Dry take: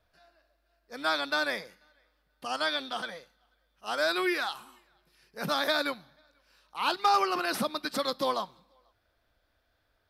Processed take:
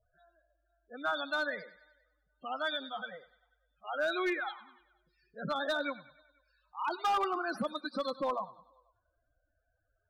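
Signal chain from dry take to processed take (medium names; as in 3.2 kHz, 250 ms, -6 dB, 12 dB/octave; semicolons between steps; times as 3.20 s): loudest bins only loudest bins 16; thinning echo 98 ms, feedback 51%, high-pass 530 Hz, level -17 dB; hard clipper -22.5 dBFS, distortion -15 dB; trim -3 dB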